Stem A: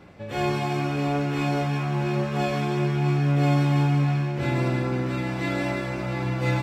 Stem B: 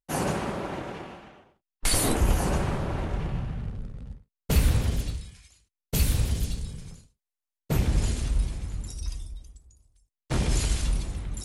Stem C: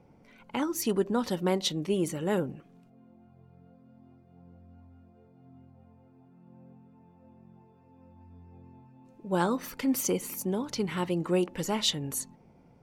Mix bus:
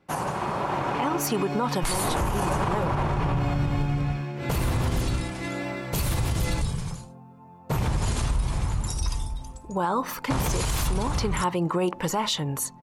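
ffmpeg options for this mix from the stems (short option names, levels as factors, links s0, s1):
-filter_complex "[0:a]volume=0.2[s0];[1:a]volume=0.944[s1];[2:a]adelay=450,volume=0.668[s2];[s1][s2]amix=inputs=2:normalize=0,equalizer=f=125:t=o:w=1:g=6,equalizer=f=250:t=o:w=1:g=-3,equalizer=f=1000:t=o:w=1:g=11,acompressor=threshold=0.0562:ratio=6,volume=1[s3];[s0][s3]amix=inputs=2:normalize=0,equalizer=f=65:t=o:w=2.2:g=-3.5,dynaudnorm=f=370:g=5:m=2.99,alimiter=limit=0.15:level=0:latency=1:release=49"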